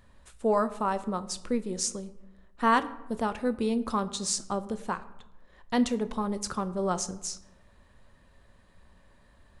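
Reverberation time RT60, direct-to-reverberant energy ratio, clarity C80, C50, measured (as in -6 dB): 0.95 s, 11.0 dB, 18.0 dB, 16.0 dB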